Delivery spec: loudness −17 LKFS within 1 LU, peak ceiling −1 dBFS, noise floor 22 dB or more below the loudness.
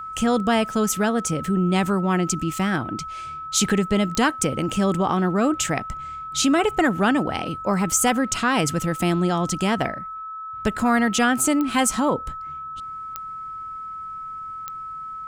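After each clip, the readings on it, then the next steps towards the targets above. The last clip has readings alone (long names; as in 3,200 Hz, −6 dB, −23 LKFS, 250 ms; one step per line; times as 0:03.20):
number of clicks 4; interfering tone 1,300 Hz; level of the tone −31 dBFS; integrated loudness −22.0 LKFS; sample peak −6.5 dBFS; target loudness −17.0 LKFS
→ click removal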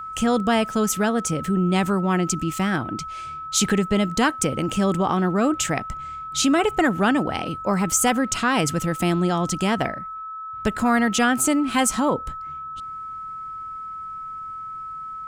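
number of clicks 0; interfering tone 1,300 Hz; level of the tone −31 dBFS
→ notch filter 1,300 Hz, Q 30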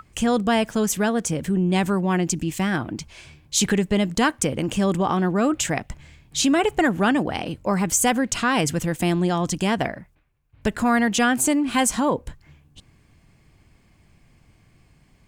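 interfering tone none found; integrated loudness −22.0 LKFS; sample peak −7.0 dBFS; target loudness −17.0 LKFS
→ level +5 dB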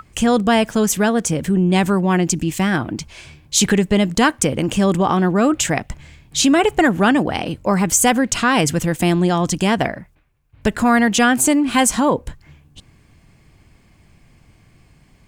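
integrated loudness −17.0 LKFS; sample peak −2.0 dBFS; background noise floor −53 dBFS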